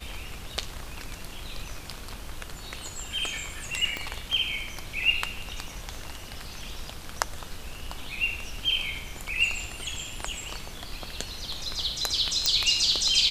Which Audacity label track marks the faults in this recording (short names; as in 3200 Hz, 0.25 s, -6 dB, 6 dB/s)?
3.970000	3.970000	pop -16 dBFS
12.460000	12.460000	pop -7 dBFS